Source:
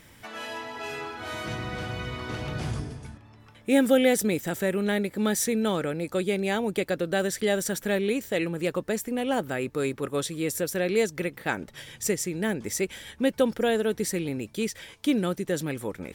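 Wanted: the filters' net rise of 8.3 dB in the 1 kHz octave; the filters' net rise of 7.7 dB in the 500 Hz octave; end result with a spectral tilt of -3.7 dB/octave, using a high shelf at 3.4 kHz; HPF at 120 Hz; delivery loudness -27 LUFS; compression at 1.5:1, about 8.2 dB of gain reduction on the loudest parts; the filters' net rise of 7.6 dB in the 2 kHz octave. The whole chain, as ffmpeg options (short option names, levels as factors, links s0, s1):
-af "highpass=120,equalizer=f=500:t=o:g=7,equalizer=f=1000:t=o:g=7,equalizer=f=2000:t=o:g=5.5,highshelf=f=3400:g=4.5,acompressor=threshold=0.0251:ratio=1.5,volume=1.06"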